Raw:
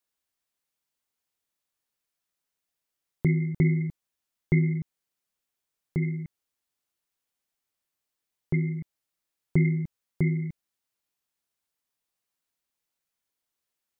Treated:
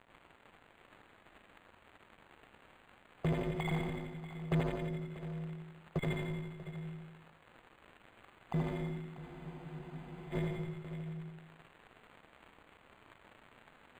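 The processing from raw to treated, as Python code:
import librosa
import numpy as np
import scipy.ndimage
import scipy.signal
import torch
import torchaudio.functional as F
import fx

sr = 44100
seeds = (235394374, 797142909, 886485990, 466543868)

p1 = fx.spec_dropout(x, sr, seeds[0], share_pct=36)
p2 = fx.highpass(p1, sr, hz=260.0, slope=6)
p3 = fx.band_shelf(p2, sr, hz=790.0, db=13.0, octaves=1.7)
p4 = fx.dmg_crackle(p3, sr, seeds[1], per_s=450.0, level_db=-47.0)
p5 = fx.schmitt(p4, sr, flips_db=-37.0)
p6 = p4 + F.gain(torch.from_numpy(p5), -4.0).numpy()
p7 = fx.echo_feedback(p6, sr, ms=87, feedback_pct=55, wet_db=-5.0)
p8 = 10.0 ** (-29.0 / 20.0) * np.tanh(p7 / 10.0 ** (-29.0 / 20.0))
p9 = p8 + fx.echo_multitap(p8, sr, ms=(78, 146, 640, 708), db=(-3.5, -7.5, -14.5, -16.5), dry=0)
p10 = fx.spec_freeze(p9, sr, seeds[2], at_s=9.22, hold_s=1.11)
p11 = np.interp(np.arange(len(p10)), np.arange(len(p10))[::8], p10[::8])
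y = F.gain(torch.from_numpy(p11), 1.0).numpy()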